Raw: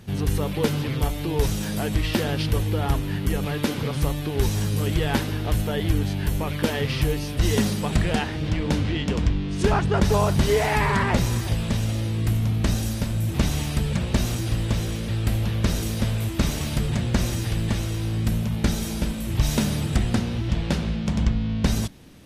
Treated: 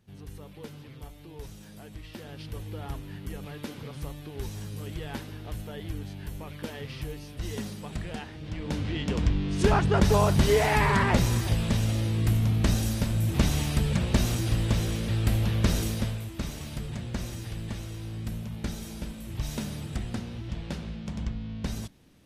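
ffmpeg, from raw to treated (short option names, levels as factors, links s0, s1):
-af "volume=0.841,afade=t=in:st=2.13:d=0.63:silence=0.473151,afade=t=in:st=8.43:d=1.05:silence=0.251189,afade=t=out:st=15.8:d=0.44:silence=0.334965"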